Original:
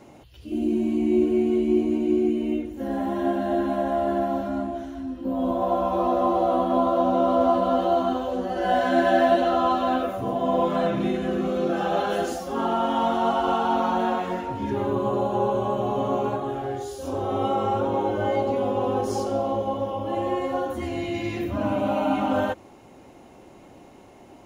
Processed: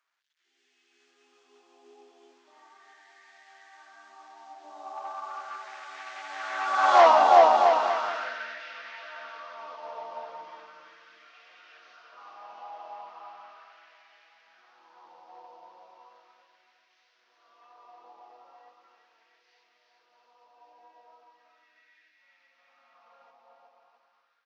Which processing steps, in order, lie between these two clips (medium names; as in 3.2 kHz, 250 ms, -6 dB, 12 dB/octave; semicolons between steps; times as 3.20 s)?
one-bit delta coder 32 kbps, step -36 dBFS; Doppler pass-by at 7.02 s, 40 m/s, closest 3.8 m; level rider gain up to 10.5 dB; bouncing-ball echo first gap 370 ms, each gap 0.8×, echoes 5; LFO high-pass sine 0.37 Hz 860–1900 Hz